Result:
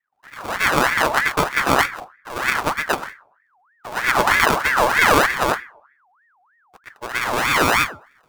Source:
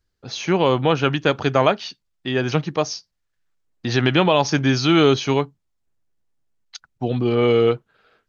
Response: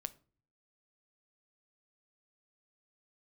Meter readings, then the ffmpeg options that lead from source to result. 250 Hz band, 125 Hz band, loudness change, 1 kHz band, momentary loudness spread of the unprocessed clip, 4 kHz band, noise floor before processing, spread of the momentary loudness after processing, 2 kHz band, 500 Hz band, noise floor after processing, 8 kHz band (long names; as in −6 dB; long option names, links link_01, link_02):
−8.0 dB, −10.0 dB, +1.0 dB, +6.0 dB, 13 LU, −0.5 dB, −74 dBFS, 14 LU, +9.5 dB, −5.5 dB, −63 dBFS, can't be measured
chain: -filter_complex "[0:a]acrusher=samples=40:mix=1:aa=0.000001,asplit=2[link_01][link_02];[1:a]atrim=start_sample=2205,asetrate=42777,aresample=44100,adelay=120[link_03];[link_02][link_03]afir=irnorm=-1:irlink=0,volume=10.5dB[link_04];[link_01][link_04]amix=inputs=2:normalize=0,aeval=exprs='val(0)*sin(2*PI*1300*n/s+1300*0.45/3.2*sin(2*PI*3.2*n/s))':channel_layout=same,volume=-6dB"